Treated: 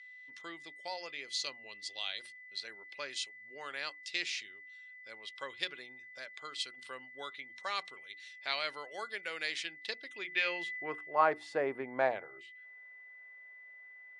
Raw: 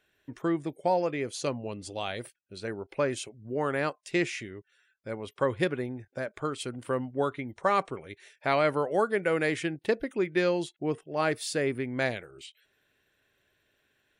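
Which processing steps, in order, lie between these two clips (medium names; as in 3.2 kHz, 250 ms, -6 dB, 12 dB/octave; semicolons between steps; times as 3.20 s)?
low-pass 9.9 kHz; hum notches 60/120/180/240/300/360 Hz; whistle 2 kHz -44 dBFS; band-pass sweep 4.2 kHz -> 860 Hz, 10.06–11.36 s; trim +6.5 dB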